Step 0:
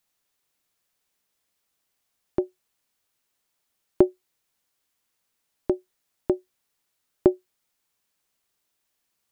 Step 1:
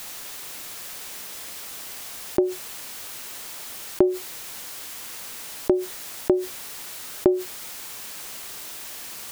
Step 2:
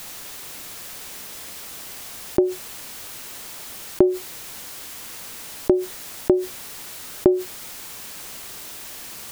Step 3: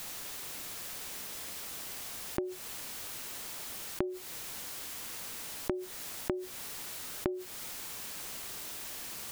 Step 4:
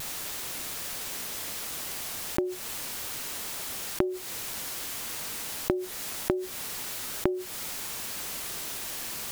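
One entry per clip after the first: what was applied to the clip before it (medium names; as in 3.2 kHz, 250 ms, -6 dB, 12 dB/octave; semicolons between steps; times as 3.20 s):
bass shelf 230 Hz -5 dB; level flattener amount 70%
bass shelf 340 Hz +5.5 dB
compression 6:1, threshold -26 dBFS, peak gain reduction 15 dB; trim -5 dB
block-companded coder 7-bit; vibrato 0.34 Hz 11 cents; trim +6.5 dB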